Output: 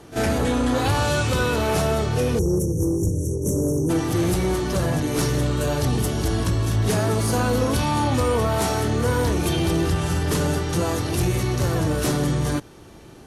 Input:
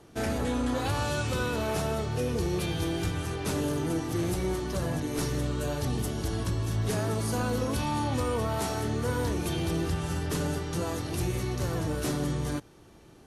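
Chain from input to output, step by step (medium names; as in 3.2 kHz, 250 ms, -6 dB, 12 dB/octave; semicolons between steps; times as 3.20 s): pre-echo 39 ms -14 dB; spectral selection erased 2.39–3.90 s, 590–5500 Hz; Chebyshev shaper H 5 -27 dB, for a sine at -18.5 dBFS; trim +7.5 dB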